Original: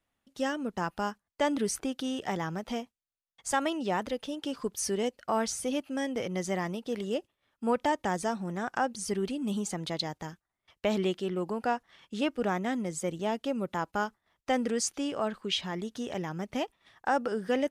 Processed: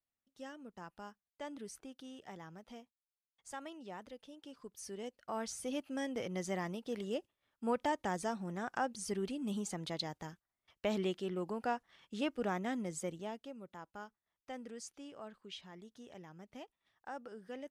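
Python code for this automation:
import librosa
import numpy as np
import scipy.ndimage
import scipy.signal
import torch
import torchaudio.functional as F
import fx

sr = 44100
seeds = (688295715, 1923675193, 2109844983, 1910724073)

y = fx.gain(x, sr, db=fx.line((4.66, -17.5), (5.86, -6.5), (13.01, -6.5), (13.56, -18.0)))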